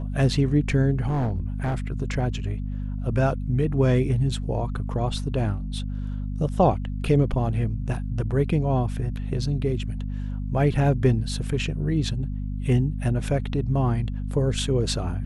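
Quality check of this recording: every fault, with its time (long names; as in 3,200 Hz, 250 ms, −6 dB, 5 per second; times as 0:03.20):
mains hum 50 Hz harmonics 5 −29 dBFS
0:01.07–0:01.75: clipping −21 dBFS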